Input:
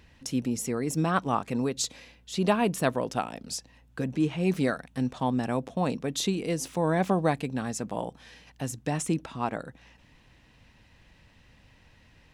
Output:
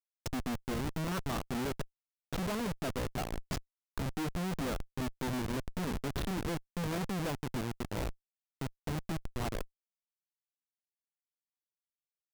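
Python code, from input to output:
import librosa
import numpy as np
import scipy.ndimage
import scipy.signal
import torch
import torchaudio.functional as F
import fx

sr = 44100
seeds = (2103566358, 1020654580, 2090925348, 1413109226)

y = fx.block_float(x, sr, bits=5)
y = fx.env_lowpass_down(y, sr, base_hz=2200.0, full_db=-25.0)
y = fx.schmitt(y, sr, flips_db=-30.5)
y = y * 10.0 ** (-3.5 / 20.0)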